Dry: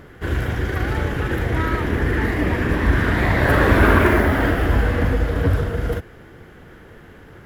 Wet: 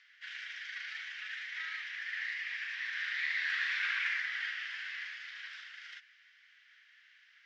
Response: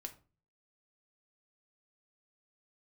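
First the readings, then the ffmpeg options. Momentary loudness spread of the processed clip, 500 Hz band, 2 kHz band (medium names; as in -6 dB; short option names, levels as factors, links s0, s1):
14 LU, under -40 dB, -11.0 dB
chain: -af "asuperpass=centerf=3300:order=8:qfactor=0.82,volume=0.473"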